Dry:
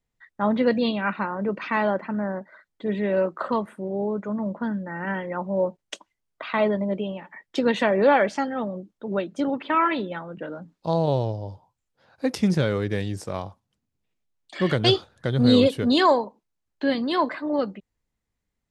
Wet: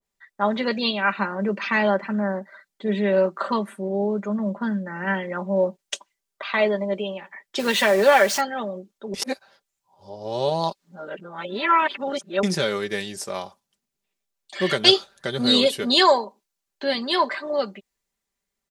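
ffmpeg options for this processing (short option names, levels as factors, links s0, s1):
-filter_complex "[0:a]asettb=1/sr,asplit=3[s0][s1][s2];[s0]atrim=end=1.174[s3];[s1]atrim=start=1.17:end=5.81,asetpts=PTS-STARTPTS,afade=t=in:d=0.004:c=qsin,afade=t=out:st=4.636:d=0.004:c=qsin,equalizer=f=200:w=1.7:g=6.5[s4];[s2]atrim=start=5.806[s5];[s3][s4]acrossfade=d=0.004:c1=hsin:c2=qsin[s6];[s6][s5]acrossfade=d=0.004:c1=qsin:c2=hsin,asettb=1/sr,asplit=3[s7][s8][s9];[s7]atrim=end=7.594[s10];[s8]atrim=start=7.59:end=8.41,asetpts=PTS-STARTPTS,afade=t=in:d=0.004:c=qsin,afade=t=out:st=0.816:d=0.004:c=qsin,aeval=exprs='val(0)+0.5*0.0224*sgn(val(0))':c=same[s11];[s9]atrim=start=8.406[s12];[s10][s11]acrossfade=d=0.004:c1=hsin:c2=qsin[s13];[s13][s12]acrossfade=d=0.004:c1=qsin:c2=hsin,asplit=3[s14][s15][s16];[s14]atrim=end=9.142[s17];[s15]atrim=start=9.138:end=12.432,asetpts=PTS-STARTPTS,areverse[s18];[s16]atrim=start=12.428[s19];[s17][s18]acrossfade=d=0.004:c1=hsin:c2=hsin[s20];[s20][s19]acrossfade=d=0.004:c1=hsin:c2=hsin,bass=f=250:g=-11,treble=f=4000:g=5,aecho=1:1:5.1:0.58,adynamicequalizer=threshold=0.0158:dfrequency=1500:dqfactor=0.7:tfrequency=1500:tqfactor=0.7:attack=5:release=100:ratio=0.375:range=2.5:mode=boostabove:tftype=highshelf"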